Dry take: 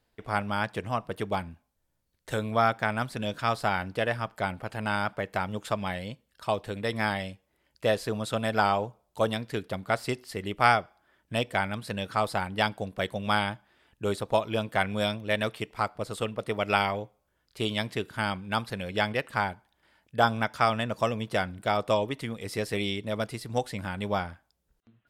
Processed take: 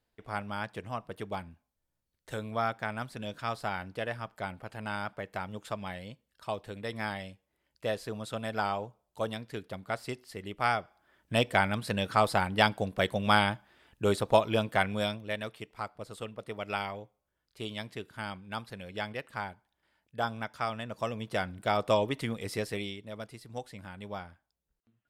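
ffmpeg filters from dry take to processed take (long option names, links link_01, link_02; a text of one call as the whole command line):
ffmpeg -i in.wav -af "volume=12dB,afade=type=in:start_time=10.71:duration=0.7:silence=0.354813,afade=type=out:start_time=14.41:duration=1:silence=0.281838,afade=type=in:start_time=20.84:duration=1.46:silence=0.316228,afade=type=out:start_time=22.3:duration=0.67:silence=0.251189" out.wav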